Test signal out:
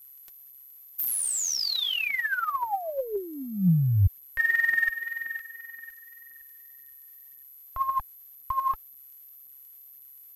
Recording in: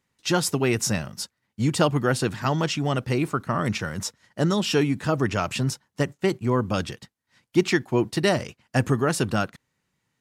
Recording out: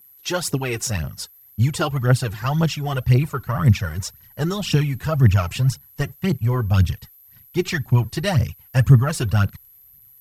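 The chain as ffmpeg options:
ffmpeg -i in.wav -af "asubboost=boost=10.5:cutoff=100,aeval=exprs='val(0)+0.00447*sin(2*PI*12000*n/s)':channel_layout=same,aphaser=in_gain=1:out_gain=1:delay=3:decay=0.62:speed=1.9:type=triangular,volume=-2dB" out.wav

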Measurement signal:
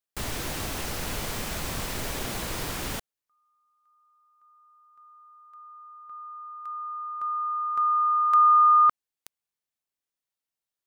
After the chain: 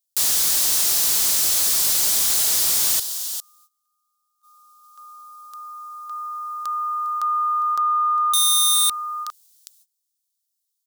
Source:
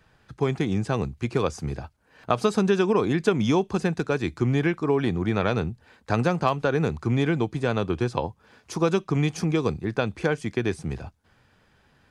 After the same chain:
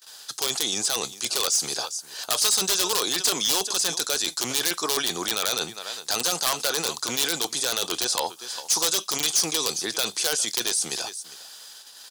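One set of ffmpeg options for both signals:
ffmpeg -i in.wav -filter_complex "[0:a]aecho=1:1:405:0.0841,asplit=2[link_01][link_02];[link_02]aeval=exprs='(mod(5.62*val(0)+1,2)-1)/5.62':channel_layout=same,volume=-5.5dB[link_03];[link_01][link_03]amix=inputs=2:normalize=0,apsyclip=8.5dB,agate=range=-21dB:threshold=-45dB:ratio=16:release=393:detection=rms,highpass=670,aexciter=amount=11.9:drive=4.3:freq=3400,volume=3dB,asoftclip=hard,volume=-3dB,areverse,acompressor=threshold=-15dB:ratio=16:attack=0.12:release=67:knee=6:detection=peak,areverse,volume=-2dB" out.wav

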